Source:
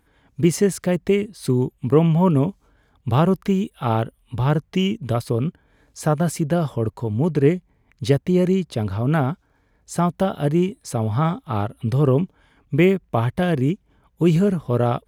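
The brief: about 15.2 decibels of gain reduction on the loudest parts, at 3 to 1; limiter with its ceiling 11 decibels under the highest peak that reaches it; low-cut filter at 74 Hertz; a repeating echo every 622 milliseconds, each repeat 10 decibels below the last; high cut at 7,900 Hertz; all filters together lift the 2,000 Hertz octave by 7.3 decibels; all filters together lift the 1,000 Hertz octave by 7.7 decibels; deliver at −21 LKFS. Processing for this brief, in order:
high-pass filter 74 Hz
low-pass filter 7,900 Hz
parametric band 1,000 Hz +8.5 dB
parametric band 2,000 Hz +6.5 dB
downward compressor 3 to 1, threshold −31 dBFS
brickwall limiter −24 dBFS
repeating echo 622 ms, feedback 32%, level −10 dB
level +14 dB

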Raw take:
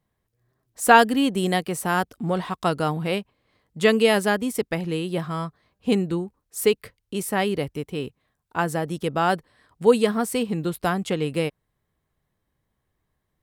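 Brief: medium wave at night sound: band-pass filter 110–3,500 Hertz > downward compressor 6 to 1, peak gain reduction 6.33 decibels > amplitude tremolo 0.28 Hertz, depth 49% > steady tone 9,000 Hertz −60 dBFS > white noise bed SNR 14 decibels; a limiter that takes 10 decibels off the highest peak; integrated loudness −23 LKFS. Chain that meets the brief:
brickwall limiter −12 dBFS
band-pass filter 110–3,500 Hz
downward compressor 6 to 1, threshold −22 dBFS
amplitude tremolo 0.28 Hz, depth 49%
steady tone 9,000 Hz −60 dBFS
white noise bed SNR 14 dB
level +8 dB

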